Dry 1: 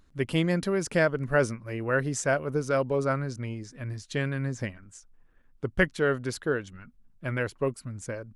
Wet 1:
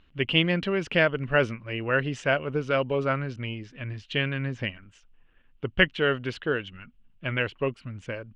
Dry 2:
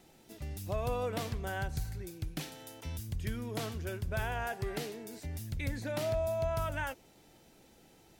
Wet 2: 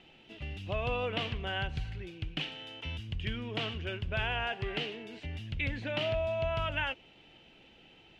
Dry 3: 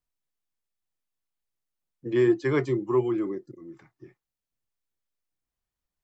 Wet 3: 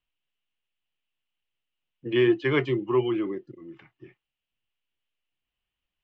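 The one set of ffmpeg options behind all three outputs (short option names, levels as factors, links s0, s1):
-af "lowpass=f=2900:t=q:w=6.1"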